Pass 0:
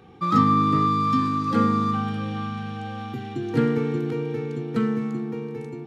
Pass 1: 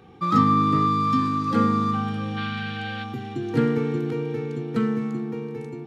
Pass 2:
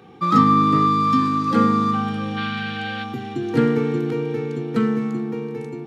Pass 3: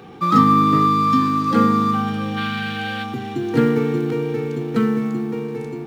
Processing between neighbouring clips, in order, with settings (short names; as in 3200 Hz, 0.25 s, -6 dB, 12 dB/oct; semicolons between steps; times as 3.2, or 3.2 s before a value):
spectral gain 2.37–3.04, 1300–5000 Hz +10 dB
HPF 130 Hz; gain +4 dB
G.711 law mismatch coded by mu; gain +1 dB